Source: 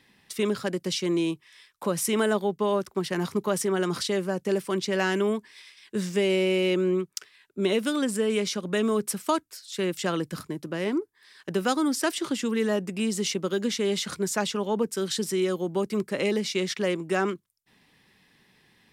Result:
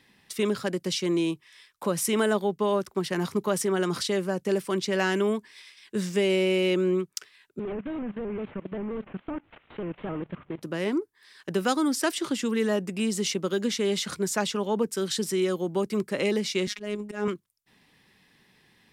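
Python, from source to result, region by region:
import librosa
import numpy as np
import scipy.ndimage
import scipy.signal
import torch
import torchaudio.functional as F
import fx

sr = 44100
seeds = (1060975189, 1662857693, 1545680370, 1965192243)

y = fx.chain(x, sr, fx.delta_mod(bps=16000, step_db=-42.5),
    fx.level_steps(step_db=16),
    fx.vibrato_shape(shape='square', rate_hz=3.8, depth_cents=100.0), at=(7.59, 10.62))
y = fx.chain(y, sr, fx.low_shelf(hz=400.0, db=5.5),
    fx.auto_swell(attack_ms=178.0),
    fx.robotise(hz=208.0), at=(16.67, 17.28))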